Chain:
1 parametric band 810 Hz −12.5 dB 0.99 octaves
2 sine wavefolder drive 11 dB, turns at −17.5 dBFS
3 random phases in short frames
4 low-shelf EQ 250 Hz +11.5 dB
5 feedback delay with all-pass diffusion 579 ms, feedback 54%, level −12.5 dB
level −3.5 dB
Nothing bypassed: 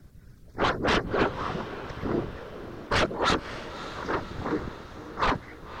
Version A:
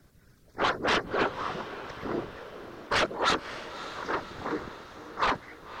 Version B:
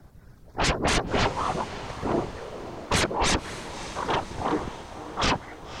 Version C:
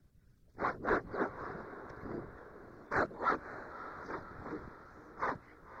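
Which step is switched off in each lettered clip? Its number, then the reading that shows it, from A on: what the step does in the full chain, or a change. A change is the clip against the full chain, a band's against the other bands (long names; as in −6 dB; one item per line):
4, 125 Hz band −8.5 dB
1, 8 kHz band +11.0 dB
2, distortion level 0 dB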